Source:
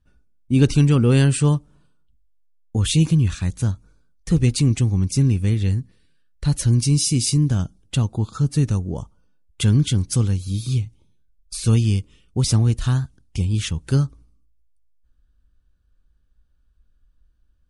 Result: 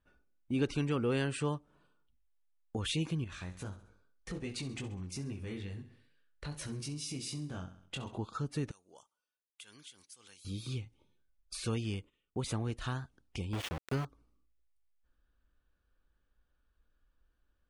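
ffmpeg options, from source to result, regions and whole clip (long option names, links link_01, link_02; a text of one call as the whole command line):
ffmpeg -i in.wav -filter_complex "[0:a]asettb=1/sr,asplit=3[link_01][link_02][link_03];[link_01]atrim=end=3.244[link_04];[link_02]atrim=start=3.24:end=8.19,asetpts=PTS-STARTPTS,afade=type=in:duration=0.004:curve=qsin,afade=type=out:start_time=4.946:duration=0.004:curve=qsin,flanger=delay=19.5:depth=3.1:speed=2.4,acompressor=threshold=-24dB:ratio=3:attack=3.2:release=140:knee=1:detection=peak,aecho=1:1:66|132|198|264:0.2|0.0918|0.0422|0.0194,atrim=end_sample=218295[link_05];[link_03]atrim=start=8.186[link_06];[link_04][link_05]acrossfade=duration=0.004:curve1=hsin:curve2=qsin[link_07];[link_07][link_06]acrossfade=duration=0.004:curve1=qsin:curve2=hsin,asettb=1/sr,asplit=3[link_08][link_09][link_10];[link_08]atrim=end=8.714[link_11];[link_09]atrim=start=8.71:end=10.45,asetpts=PTS-STARTPTS,afade=type=in:duration=0.004:curve=qsin,afade=type=out:start_time=1.736:duration=0.004:curve=qsin,aderivative,acompressor=threshold=-45dB:ratio=3:attack=3.2:release=140:knee=1:detection=peak[link_12];[link_10]atrim=start=10.446[link_13];[link_11][link_12]acrossfade=duration=0.004:curve1=hsin:curve2=qsin[link_14];[link_14][link_13]acrossfade=duration=0.004:curve1=qsin:curve2=hsin,asettb=1/sr,asplit=3[link_15][link_16][link_17];[link_15]atrim=end=11.944[link_18];[link_16]atrim=start=11.94:end=12.65,asetpts=PTS-STARTPTS,afade=type=in:duration=0.004:curve=qsin,afade=type=out:start_time=0.706:duration=0.004:curve=qsin,equalizer=frequency=5300:width=5:gain=-11.5,agate=range=-17dB:threshold=-48dB:ratio=16:release=100:detection=peak[link_19];[link_17]atrim=start=12.646[link_20];[link_18][link_19]acrossfade=duration=0.004:curve1=hsin:curve2=qsin[link_21];[link_21][link_20]acrossfade=duration=0.004:curve1=qsin:curve2=hsin,asettb=1/sr,asplit=3[link_22][link_23][link_24];[link_22]atrim=end=13.534[link_25];[link_23]atrim=start=13.53:end=14.05,asetpts=PTS-STARTPTS,afade=type=in:duration=0.004:curve=qsin,afade=type=out:start_time=0.516:duration=0.004:curve=qsin,lowshelf=frequency=69:gain=8.5,aeval=exprs='val(0)*gte(abs(val(0)),0.0631)':channel_layout=same[link_26];[link_24]atrim=start=14.046[link_27];[link_25][link_26]acrossfade=duration=0.004:curve1=hsin:curve2=qsin[link_28];[link_28][link_27]acrossfade=duration=0.004:curve1=qsin:curve2=hsin,bass=frequency=250:gain=-14,treble=frequency=4000:gain=-12,acompressor=threshold=-44dB:ratio=1.5" out.wav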